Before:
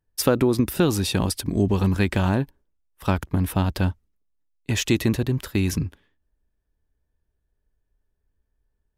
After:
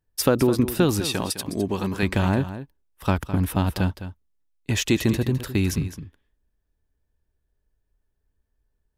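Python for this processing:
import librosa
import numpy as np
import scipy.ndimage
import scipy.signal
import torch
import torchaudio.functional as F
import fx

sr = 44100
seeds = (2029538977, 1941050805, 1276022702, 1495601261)

y = fx.highpass(x, sr, hz=320.0, slope=6, at=(1.0, 2.03))
y = y + 10.0 ** (-12.5 / 20.0) * np.pad(y, (int(209 * sr / 1000.0), 0))[:len(y)]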